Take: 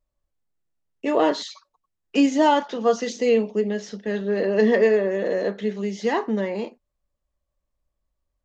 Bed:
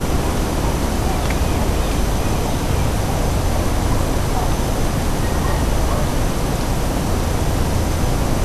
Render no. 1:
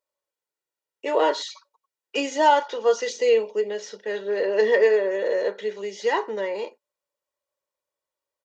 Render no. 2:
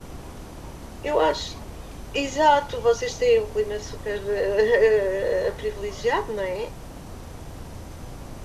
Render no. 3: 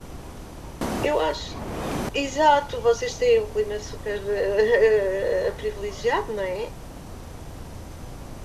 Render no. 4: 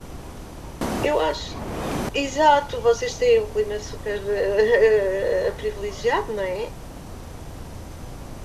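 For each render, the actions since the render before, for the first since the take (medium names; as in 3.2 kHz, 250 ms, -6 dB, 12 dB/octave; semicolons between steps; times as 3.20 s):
high-pass 450 Hz 12 dB/octave; comb 2.1 ms, depth 51%
add bed -20 dB
0.81–2.09 s: three bands compressed up and down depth 100%
trim +1.5 dB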